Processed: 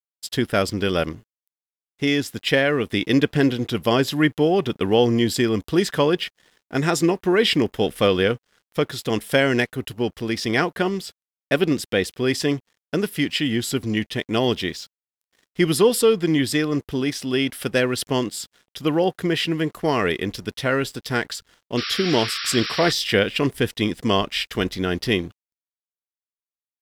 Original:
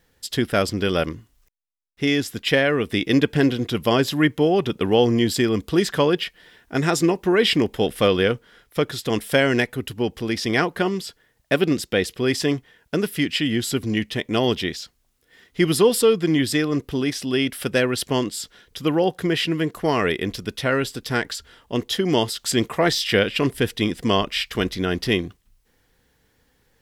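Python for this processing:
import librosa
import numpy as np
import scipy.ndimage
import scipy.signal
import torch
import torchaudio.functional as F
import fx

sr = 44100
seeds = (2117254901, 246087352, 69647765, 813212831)

y = np.sign(x) * np.maximum(np.abs(x) - 10.0 ** (-49.0 / 20.0), 0.0)
y = fx.spec_paint(y, sr, seeds[0], shape='noise', start_s=21.77, length_s=1.15, low_hz=1100.0, high_hz=5700.0, level_db=-29.0)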